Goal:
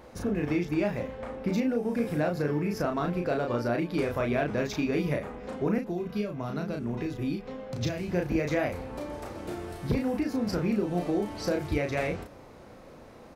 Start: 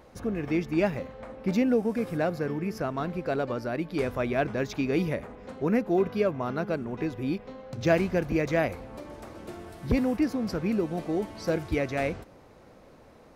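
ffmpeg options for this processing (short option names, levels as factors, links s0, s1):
-filter_complex "[0:a]acompressor=threshold=0.0398:ratio=6,asplit=2[s0][s1];[s1]adelay=34,volume=0.668[s2];[s0][s2]amix=inputs=2:normalize=0,asettb=1/sr,asplit=3[s3][s4][s5];[s3]atrim=end=5.784[s6];[s4]atrim=start=5.78:end=8.11,asetpts=PTS-STARTPTS,afade=t=in:d=0.004:c=qsin,afade=t=out:st=2.326:d=0.004:c=qsin,acrossover=split=250|3000[s7][s8][s9];[s8]acompressor=threshold=0.0112:ratio=3[s10];[s7][s10][s9]amix=inputs=3:normalize=0[s11];[s5]atrim=start=8.106[s12];[s6][s11]acrossfade=d=0.004:c1=hsin:c2=qsin[s13];[s13][s12]acrossfade=d=0.004:c1=qsin:c2=hsin,volume=1.33"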